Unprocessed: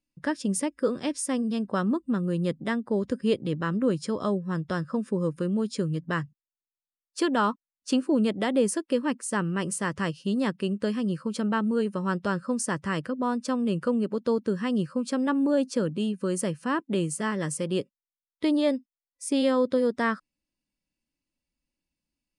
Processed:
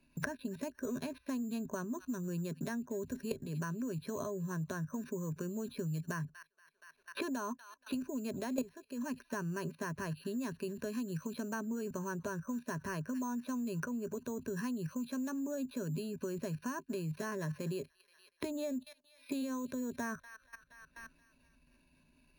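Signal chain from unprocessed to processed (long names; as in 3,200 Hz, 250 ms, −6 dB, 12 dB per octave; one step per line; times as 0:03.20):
delay with a high-pass on its return 238 ms, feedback 40%, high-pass 1,800 Hz, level −21 dB
bad sample-rate conversion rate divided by 6×, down filtered, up hold
output level in coarse steps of 20 dB
EQ curve with evenly spaced ripples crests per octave 1.5, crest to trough 12 dB
multiband upward and downward compressor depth 100%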